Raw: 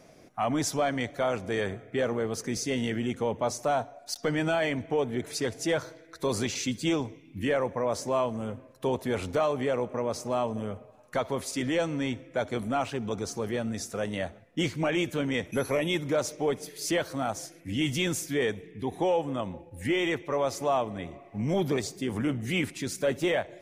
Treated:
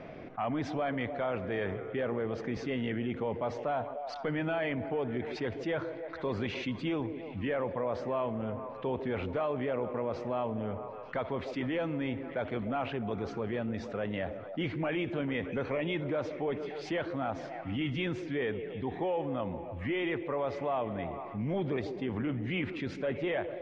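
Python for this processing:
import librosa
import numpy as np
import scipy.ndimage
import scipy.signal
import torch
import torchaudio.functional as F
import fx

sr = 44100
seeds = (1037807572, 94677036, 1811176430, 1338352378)

y = scipy.signal.sosfilt(scipy.signal.butter(4, 3000.0, 'lowpass', fs=sr, output='sos'), x)
y = fx.echo_stepped(y, sr, ms=149, hz=380.0, octaves=0.7, feedback_pct=70, wet_db=-11.5)
y = fx.env_flatten(y, sr, amount_pct=50)
y = y * librosa.db_to_amplitude(-7.0)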